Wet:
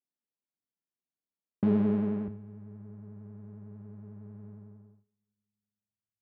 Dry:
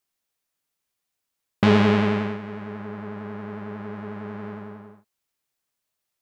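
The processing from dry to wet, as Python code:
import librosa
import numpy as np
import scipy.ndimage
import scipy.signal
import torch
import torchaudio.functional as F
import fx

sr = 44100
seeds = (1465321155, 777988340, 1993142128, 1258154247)

y = fx.bandpass_q(x, sr, hz=fx.steps((0.0, 230.0), (2.28, 100.0)), q=1.2)
y = fx.rev_double_slope(y, sr, seeds[0], early_s=0.85, late_s=2.8, knee_db=-18, drr_db=18.5)
y = y * librosa.db_to_amplitude(-6.0)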